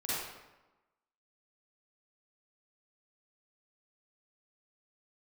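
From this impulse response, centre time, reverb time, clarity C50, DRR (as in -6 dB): 0.102 s, 1.1 s, -6.5 dB, -10.5 dB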